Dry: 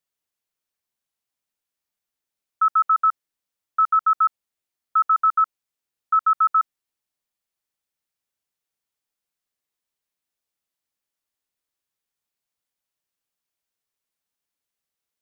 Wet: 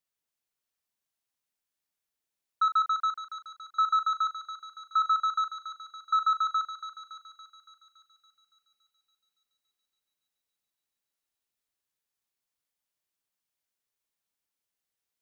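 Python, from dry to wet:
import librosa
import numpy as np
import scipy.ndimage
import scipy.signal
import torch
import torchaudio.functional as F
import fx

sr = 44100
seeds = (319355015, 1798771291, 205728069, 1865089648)

y = 10.0 ** (-14.5 / 20.0) * np.tanh(x / 10.0 ** (-14.5 / 20.0))
y = fx.doubler(y, sr, ms=38.0, db=-11)
y = fx.echo_thinned(y, sr, ms=282, feedback_pct=71, hz=1200.0, wet_db=-7.0)
y = y * librosa.db_to_amplitude(-3.5)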